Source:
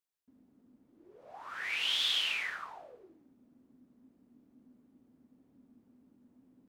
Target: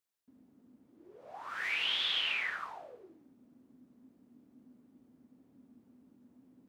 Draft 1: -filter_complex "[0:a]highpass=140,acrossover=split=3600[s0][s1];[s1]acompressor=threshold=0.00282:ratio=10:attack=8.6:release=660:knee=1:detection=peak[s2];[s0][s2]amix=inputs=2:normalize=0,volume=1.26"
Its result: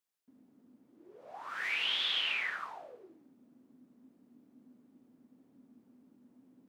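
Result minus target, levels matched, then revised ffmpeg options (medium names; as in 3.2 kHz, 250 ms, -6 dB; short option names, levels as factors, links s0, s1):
125 Hz band -2.5 dB
-filter_complex "[0:a]highpass=63,acrossover=split=3600[s0][s1];[s1]acompressor=threshold=0.00282:ratio=10:attack=8.6:release=660:knee=1:detection=peak[s2];[s0][s2]amix=inputs=2:normalize=0,volume=1.26"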